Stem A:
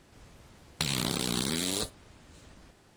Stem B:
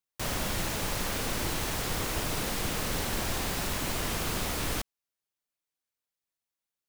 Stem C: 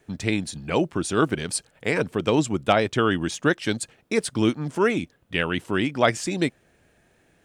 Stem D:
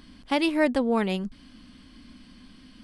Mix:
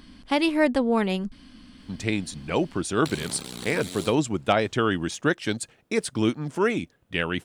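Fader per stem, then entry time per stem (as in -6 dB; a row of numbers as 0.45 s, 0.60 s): -7.0 dB, mute, -2.0 dB, +1.5 dB; 2.25 s, mute, 1.80 s, 0.00 s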